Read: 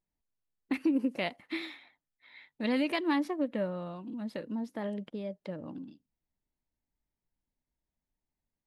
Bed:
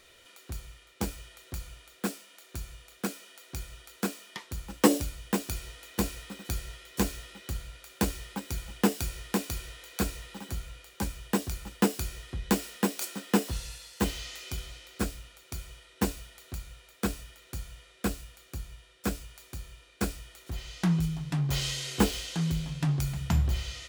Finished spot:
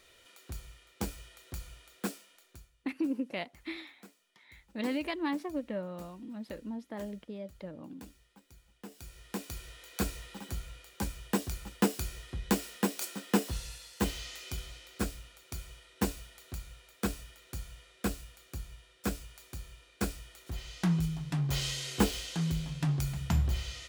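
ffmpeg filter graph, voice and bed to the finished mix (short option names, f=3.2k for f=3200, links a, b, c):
-filter_complex "[0:a]adelay=2150,volume=-4dB[a];[1:a]volume=17.5dB,afade=t=out:st=2.07:d=0.64:silence=0.1,afade=t=in:st=8.86:d=1.19:silence=0.0891251[b];[a][b]amix=inputs=2:normalize=0"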